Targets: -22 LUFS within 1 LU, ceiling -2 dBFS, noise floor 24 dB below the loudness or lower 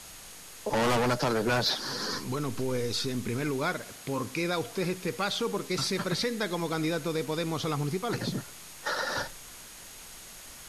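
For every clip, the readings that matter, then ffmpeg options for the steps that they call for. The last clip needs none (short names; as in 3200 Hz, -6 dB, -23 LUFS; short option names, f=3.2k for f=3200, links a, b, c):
steady tone 6600 Hz; tone level -55 dBFS; noise floor -47 dBFS; noise floor target -55 dBFS; loudness -30.5 LUFS; peak -16.5 dBFS; loudness target -22.0 LUFS
-> -af "bandreject=f=6.6k:w=30"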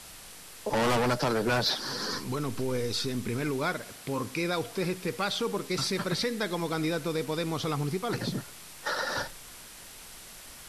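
steady tone none; noise floor -47 dBFS; noise floor target -55 dBFS
-> -af "afftdn=nr=8:nf=-47"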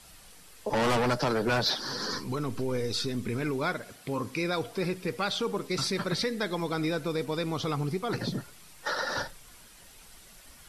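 noise floor -53 dBFS; noise floor target -55 dBFS
-> -af "afftdn=nr=6:nf=-53"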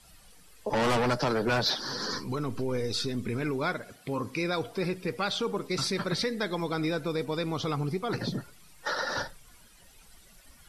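noise floor -56 dBFS; loudness -30.5 LUFS; peak -16.5 dBFS; loudness target -22.0 LUFS
-> -af "volume=8.5dB"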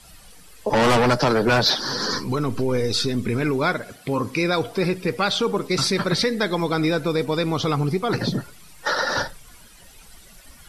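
loudness -22.0 LUFS; peak -8.0 dBFS; noise floor -48 dBFS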